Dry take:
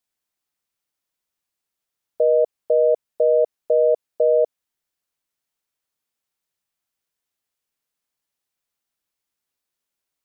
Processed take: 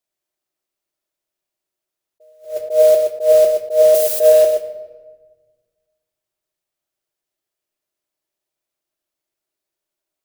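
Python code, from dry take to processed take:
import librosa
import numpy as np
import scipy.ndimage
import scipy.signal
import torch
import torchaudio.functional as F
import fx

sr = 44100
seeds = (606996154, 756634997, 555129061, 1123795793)

p1 = fx.crossing_spikes(x, sr, level_db=-16.0, at=(3.93, 4.43))
p2 = fx.peak_eq(p1, sr, hz=320.0, db=-3.0, octaves=1.9)
p3 = fx.small_body(p2, sr, hz=(370.0, 600.0), ring_ms=40, db=14)
p4 = fx.mod_noise(p3, sr, seeds[0], snr_db=22)
p5 = p4 + fx.echo_single(p4, sr, ms=122, db=-7.0, dry=0)
p6 = fx.room_shoebox(p5, sr, seeds[1], volume_m3=1100.0, walls='mixed', distance_m=0.59)
p7 = fx.attack_slew(p6, sr, db_per_s=170.0)
y = p7 * librosa.db_to_amplitude(-2.5)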